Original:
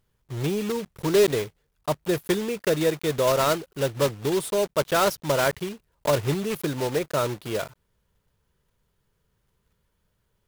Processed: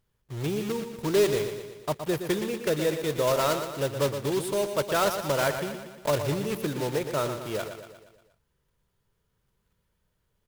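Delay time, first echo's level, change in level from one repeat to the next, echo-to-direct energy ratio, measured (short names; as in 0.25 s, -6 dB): 0.118 s, -8.5 dB, -5.5 dB, -7.0 dB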